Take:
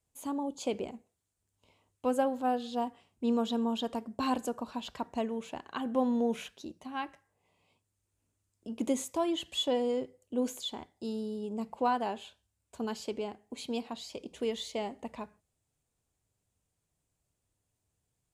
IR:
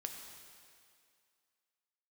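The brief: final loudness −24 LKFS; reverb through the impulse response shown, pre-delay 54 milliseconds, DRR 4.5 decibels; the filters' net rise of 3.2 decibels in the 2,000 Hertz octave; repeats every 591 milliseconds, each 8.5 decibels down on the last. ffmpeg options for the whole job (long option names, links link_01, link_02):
-filter_complex "[0:a]equalizer=frequency=2000:width_type=o:gain=4.5,aecho=1:1:591|1182|1773|2364:0.376|0.143|0.0543|0.0206,asplit=2[link_01][link_02];[1:a]atrim=start_sample=2205,adelay=54[link_03];[link_02][link_03]afir=irnorm=-1:irlink=0,volume=-2.5dB[link_04];[link_01][link_04]amix=inputs=2:normalize=0,volume=8.5dB"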